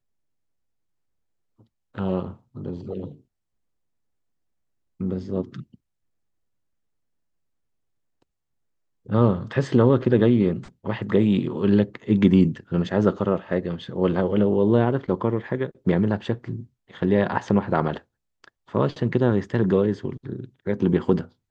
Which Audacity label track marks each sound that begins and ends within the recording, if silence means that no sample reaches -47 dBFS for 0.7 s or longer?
1.600000	3.200000	sound
5.000000	5.750000	sound